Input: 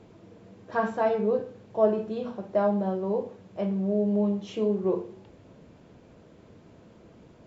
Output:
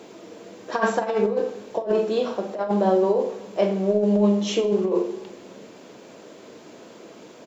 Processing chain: Chebyshev high-pass 340 Hz, order 2; treble shelf 3.8 kHz +11.5 dB; compressor with a negative ratio -28 dBFS, ratio -0.5; doubling 43 ms -11.5 dB; on a send: reverberation RT60 1.4 s, pre-delay 23 ms, DRR 13 dB; on the sum: trim +8 dB

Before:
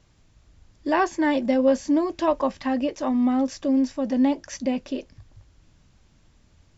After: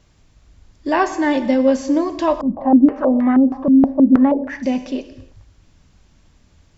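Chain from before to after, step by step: gated-style reverb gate 330 ms falling, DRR 9 dB; 2.41–4.63 s: step-sequenced low-pass 6.3 Hz 210–1800 Hz; trim +4 dB

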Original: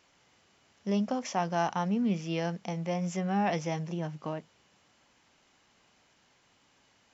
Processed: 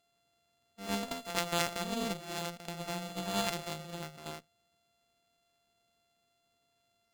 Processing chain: sorted samples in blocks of 64 samples; peaking EQ 4.2 kHz +5 dB 1.9 oct; reverse echo 83 ms -6 dB; Chebyshev shaper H 2 -14 dB, 3 -12 dB, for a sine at -12.5 dBFS

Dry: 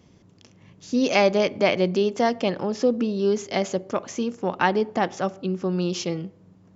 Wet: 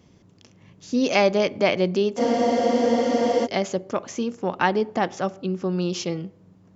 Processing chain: spectral freeze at 2.21 s, 1.23 s

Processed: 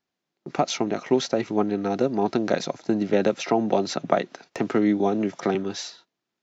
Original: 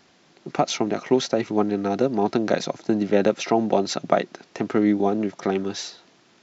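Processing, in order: spectral noise reduction 8 dB; gate -49 dBFS, range -17 dB; 3.13–5.55 s: three bands compressed up and down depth 40%; trim -1.5 dB

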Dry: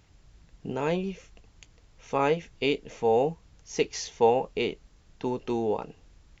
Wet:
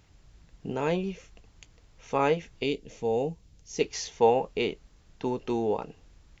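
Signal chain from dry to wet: 2.63–3.81 s: peaking EQ 1.2 kHz -10.5 dB 2.2 oct

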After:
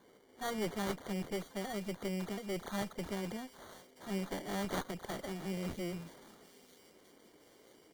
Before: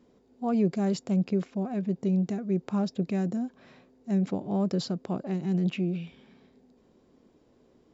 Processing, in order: delay that grows with frequency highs early, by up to 103 ms; high-pass 1.4 kHz 6 dB/octave; peaking EQ 2 kHz -7.5 dB 2 oct; in parallel at -0.5 dB: compression, threshold -56 dBFS, peak gain reduction 19.5 dB; on the sum: sample-and-hold 17×; one-sided clip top -49.5 dBFS; on a send: feedback echo behind a high-pass 978 ms, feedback 56%, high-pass 3.5 kHz, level -13 dB; on the sum: trim +6.5 dB

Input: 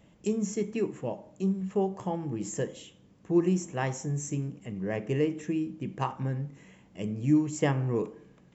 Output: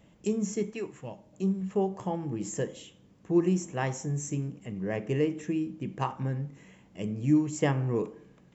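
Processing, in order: 0.69–1.32 s: peaking EQ 140 Hz -> 760 Hz -10 dB 2.4 oct

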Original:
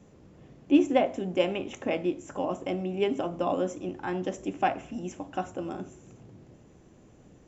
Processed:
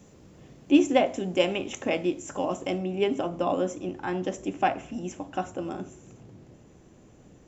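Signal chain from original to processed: treble shelf 3.9 kHz +10.5 dB, from 2.78 s +2.5 dB; trim +1.5 dB

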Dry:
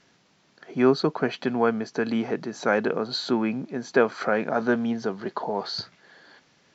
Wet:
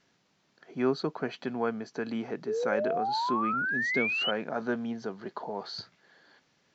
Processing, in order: 3.65–4.23 s: graphic EQ 125/250/500/1000/2000/4000 Hz +4/+4/-5/-8/-5/+7 dB; 2.47–4.31 s: painted sound rise 410–3100 Hz -22 dBFS; trim -8 dB

